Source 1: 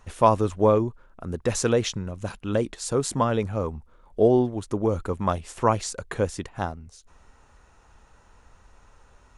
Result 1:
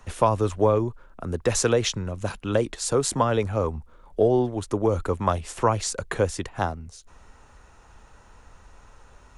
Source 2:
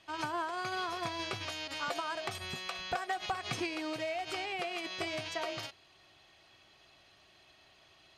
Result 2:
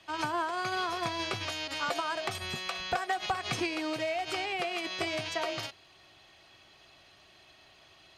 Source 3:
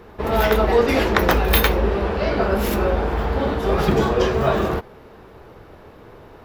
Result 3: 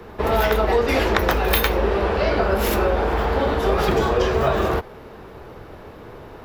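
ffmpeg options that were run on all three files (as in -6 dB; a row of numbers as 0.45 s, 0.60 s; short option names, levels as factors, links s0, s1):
-filter_complex "[0:a]acrossover=split=120|290[s0][s1][s2];[s0]acompressor=threshold=0.0447:ratio=4[s3];[s1]acompressor=threshold=0.00891:ratio=4[s4];[s2]acompressor=threshold=0.0891:ratio=4[s5];[s3][s4][s5]amix=inputs=3:normalize=0,volume=1.58"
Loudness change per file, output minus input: +0.5 LU, +4.0 LU, -0.5 LU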